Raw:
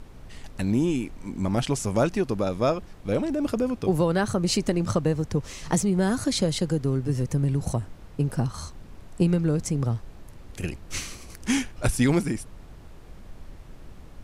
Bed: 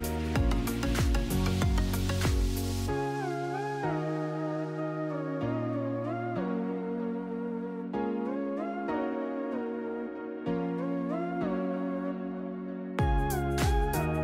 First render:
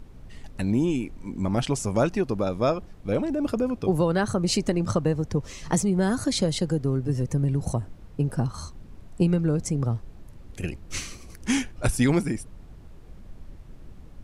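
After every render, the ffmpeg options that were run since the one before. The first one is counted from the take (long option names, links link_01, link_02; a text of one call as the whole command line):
ffmpeg -i in.wav -af "afftdn=noise_reduction=6:noise_floor=-46" out.wav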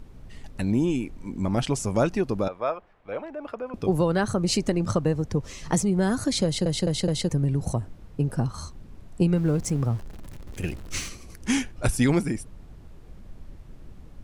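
ffmpeg -i in.wav -filter_complex "[0:a]asettb=1/sr,asplit=3[link_01][link_02][link_03];[link_01]atrim=end=2.484[link_04];[link_02]atrim=start=2.48:end=3.74,asetpts=PTS-STARTPTS,afade=type=in:duration=0.004:curve=qsin,afade=type=out:start_time=1.256:duration=0.004:curve=qsin,acrossover=split=540 2800:gain=0.112 1 0.0794[link_05][link_06][link_07];[link_05][link_06][link_07]amix=inputs=3:normalize=0[link_08];[link_03]atrim=start=3.736[link_09];[link_04][link_08]acrossfade=duration=0.004:curve1=hsin:curve2=qsin[link_10];[link_10][link_09]acrossfade=duration=0.004:curve1=qsin:curve2=hsin,asettb=1/sr,asplit=3[link_11][link_12][link_13];[link_11]atrim=end=9.364[link_14];[link_12]atrim=start=9.36:end=11.09,asetpts=PTS-STARTPTS,afade=type=in:duration=0.004:curve=qsin,afade=type=out:start_time=1.726:duration=0.004:curve=qsin,aeval=exprs='val(0)+0.5*0.0106*sgn(val(0))':channel_layout=same[link_15];[link_13]atrim=start=11.086[link_16];[link_14][link_15]acrossfade=duration=0.004:curve1=hsin:curve2=qsin[link_17];[link_17][link_16]acrossfade=duration=0.004:curve1=qsin:curve2=hsin,asplit=5[link_18][link_19][link_20][link_21][link_22];[link_18]atrim=end=6.662[link_23];[link_19]atrim=start=6.448:end=6.662[link_24];[link_20]atrim=start=6.448:end=6.662[link_25];[link_21]atrim=start=6.448:end=6.662[link_26];[link_22]atrim=start=7.288[link_27];[link_23][link_24]acrossfade=duration=0.004:curve1=hsin:curve2=hsin[link_28];[link_28][link_25]acrossfade=duration=0.004:curve1=hsin:curve2=hsin[link_29];[link_29][link_26]acrossfade=duration=0.004:curve1=hsin:curve2=hsin[link_30];[link_30][link_27]acrossfade=duration=0.004:curve1=hsin:curve2=hsin" out.wav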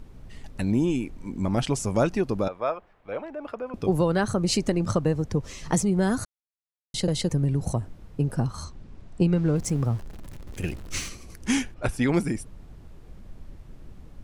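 ffmpeg -i in.wav -filter_complex "[0:a]asettb=1/sr,asplit=3[link_01][link_02][link_03];[link_01]atrim=end=8.644[link_04];[link_02]atrim=start=8.64:end=9.56,asetpts=PTS-STARTPTS,afade=type=in:duration=0.004:curve=qsin,afade=type=out:start_time=0.916:duration=0.004:curve=qsin,lowpass=6900[link_05];[link_03]atrim=start=9.556[link_06];[link_04][link_05]acrossfade=duration=0.004:curve1=hsin:curve2=qsin[link_07];[link_07][link_06]acrossfade=duration=0.004:curve1=qsin:curve2=hsin,asettb=1/sr,asplit=3[link_08][link_09][link_10];[link_08]atrim=end=11.744[link_11];[link_09]atrim=start=11.74:end=12.14,asetpts=PTS-STARTPTS,afade=type=in:duration=0.004:curve=qsin,afade=type=out:start_time=0.396:duration=0.004:curve=qsin,bass=frequency=250:gain=-5,treble=frequency=4000:gain=-11[link_12];[link_10]atrim=start=12.136[link_13];[link_11][link_12]acrossfade=duration=0.004:curve1=hsin:curve2=qsin[link_14];[link_14][link_13]acrossfade=duration=0.004:curve1=qsin:curve2=hsin,asplit=3[link_15][link_16][link_17];[link_15]atrim=end=6.25,asetpts=PTS-STARTPTS,afade=type=out:start_time=6.246:duration=0.004:curve=hsin[link_18];[link_16]atrim=start=6.25:end=6.94,asetpts=PTS-STARTPTS,volume=0[link_19];[link_17]atrim=start=6.94,asetpts=PTS-STARTPTS,afade=type=in:duration=0.004:curve=hsin[link_20];[link_18][link_19][link_20]concat=n=3:v=0:a=1" out.wav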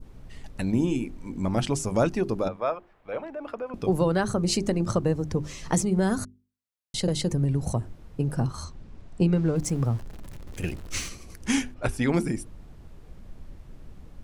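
ffmpeg -i in.wav -af "bandreject=frequency=50:width_type=h:width=6,bandreject=frequency=100:width_type=h:width=6,bandreject=frequency=150:width_type=h:width=6,bandreject=frequency=200:width_type=h:width=6,bandreject=frequency=250:width_type=h:width=6,bandreject=frequency=300:width_type=h:width=6,bandreject=frequency=350:width_type=h:width=6,bandreject=frequency=400:width_type=h:width=6,adynamicequalizer=threshold=0.0112:dfrequency=2300:dqfactor=0.71:tfrequency=2300:tqfactor=0.71:attack=5:release=100:ratio=0.375:range=1.5:mode=cutabove:tftype=bell" out.wav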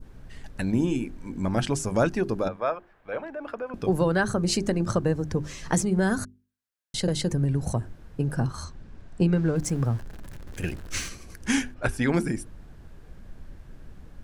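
ffmpeg -i in.wav -af "equalizer=frequency=1600:width_type=o:width=0.27:gain=8" out.wav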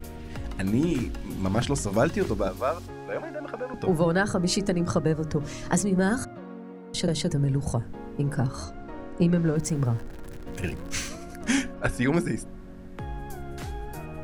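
ffmpeg -i in.wav -i bed.wav -filter_complex "[1:a]volume=-9dB[link_01];[0:a][link_01]amix=inputs=2:normalize=0" out.wav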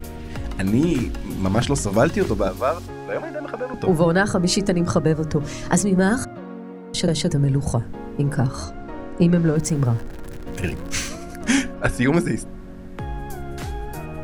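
ffmpeg -i in.wav -af "volume=5.5dB" out.wav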